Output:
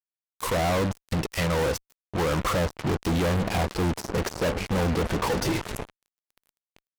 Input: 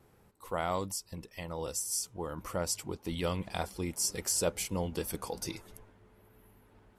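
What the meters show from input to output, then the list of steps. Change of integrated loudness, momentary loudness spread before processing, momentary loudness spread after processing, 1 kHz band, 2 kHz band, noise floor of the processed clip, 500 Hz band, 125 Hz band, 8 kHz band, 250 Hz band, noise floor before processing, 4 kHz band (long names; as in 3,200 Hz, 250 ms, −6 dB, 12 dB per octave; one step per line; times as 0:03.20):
+8.0 dB, 10 LU, 7 LU, +10.0 dB, +13.0 dB, below −85 dBFS, +9.5 dB, +13.0 dB, −3.5 dB, +11.5 dB, −64 dBFS, +6.0 dB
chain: treble cut that deepens with the level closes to 930 Hz, closed at −30.5 dBFS
fuzz pedal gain 54 dB, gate −51 dBFS
level −9 dB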